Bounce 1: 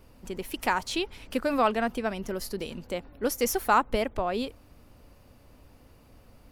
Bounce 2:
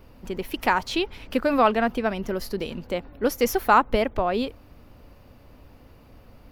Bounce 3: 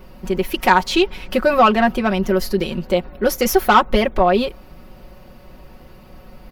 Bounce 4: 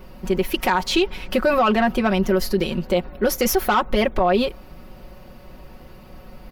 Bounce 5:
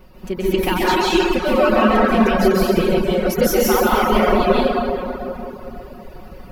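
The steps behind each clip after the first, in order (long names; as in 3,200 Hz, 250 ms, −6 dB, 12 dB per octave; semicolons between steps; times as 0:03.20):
parametric band 8,700 Hz −10.5 dB 1.1 octaves; level +5 dB
soft clipping −12 dBFS, distortion −16 dB; comb filter 5.4 ms, depth 77%; level +6.5 dB
brickwall limiter −9.5 dBFS, peak gain reduction 8 dB
dense smooth reverb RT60 3.3 s, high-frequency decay 0.5×, pre-delay 120 ms, DRR −9 dB; reverb reduction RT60 0.64 s; level −4 dB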